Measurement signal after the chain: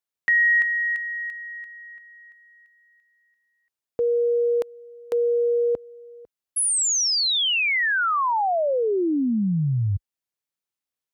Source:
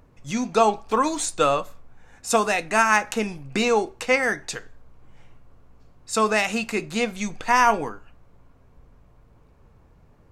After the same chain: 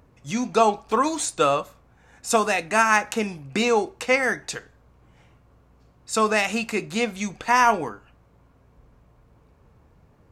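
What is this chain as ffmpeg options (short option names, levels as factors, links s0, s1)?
-af "highpass=43"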